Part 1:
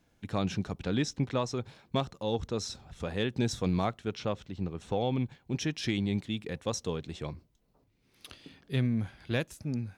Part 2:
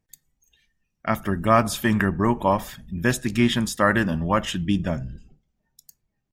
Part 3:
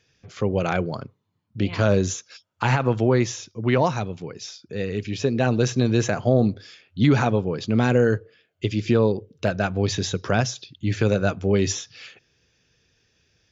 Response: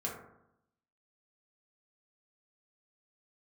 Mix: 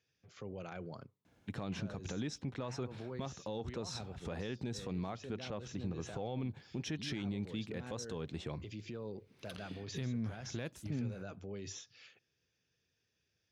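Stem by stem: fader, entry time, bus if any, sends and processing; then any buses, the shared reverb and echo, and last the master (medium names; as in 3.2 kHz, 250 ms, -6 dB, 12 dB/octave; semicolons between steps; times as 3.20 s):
+1.0 dB, 1.25 s, bus A, no send, treble shelf 4.3 kHz -6.5 dB
mute
-16.5 dB, 0.00 s, bus A, no send, peak limiter -19 dBFS, peak gain reduction 10.5 dB
bus A: 0.0 dB, high-pass 69 Hz; compression 2:1, threshold -36 dBFS, peak gain reduction 8 dB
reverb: none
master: peak limiter -29.5 dBFS, peak gain reduction 8.5 dB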